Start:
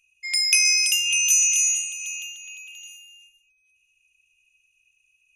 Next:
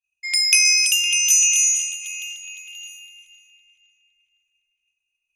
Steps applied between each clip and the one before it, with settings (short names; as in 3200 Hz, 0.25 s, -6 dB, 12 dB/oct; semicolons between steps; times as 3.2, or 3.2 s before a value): expander -53 dBFS; darkening echo 0.511 s, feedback 44%, low-pass 3500 Hz, level -10 dB; gain +3 dB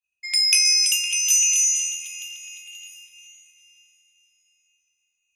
two-slope reverb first 0.29 s, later 4.5 s, from -18 dB, DRR 7 dB; gain -2.5 dB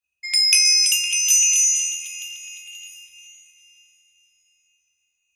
bell 78 Hz +8.5 dB 0.85 oct; gain +2 dB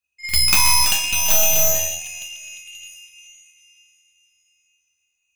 tracing distortion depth 0.15 ms; reverse echo 47 ms -13.5 dB; gain +1 dB